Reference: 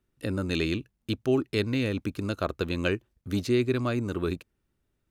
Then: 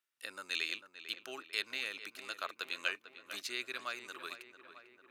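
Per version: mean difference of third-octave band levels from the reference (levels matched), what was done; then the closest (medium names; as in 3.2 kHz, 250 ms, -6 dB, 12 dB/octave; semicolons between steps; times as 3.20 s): 13.0 dB: high-pass 1.4 kHz 12 dB/octave; on a send: filtered feedback delay 447 ms, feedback 69%, low-pass 2.4 kHz, level -11 dB; on the sum: trim -2 dB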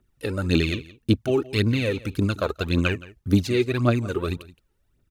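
2.5 dB: phaser 1.8 Hz, delay 2.5 ms, feedback 65%; on a send: delay 170 ms -19.5 dB; on the sum: trim +2.5 dB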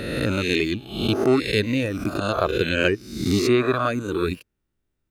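6.5 dB: reverse spectral sustain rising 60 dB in 1.35 s; reverb removal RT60 1.8 s; trim +6.5 dB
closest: second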